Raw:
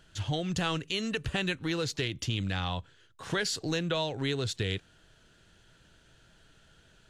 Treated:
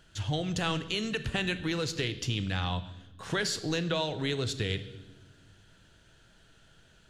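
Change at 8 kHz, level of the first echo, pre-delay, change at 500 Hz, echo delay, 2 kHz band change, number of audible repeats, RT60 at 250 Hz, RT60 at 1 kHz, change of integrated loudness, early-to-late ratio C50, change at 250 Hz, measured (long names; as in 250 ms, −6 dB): 0.0 dB, no echo audible, 19 ms, +0.5 dB, no echo audible, +0.5 dB, no echo audible, 2.0 s, 0.95 s, +0.5 dB, 13.5 dB, 0.0 dB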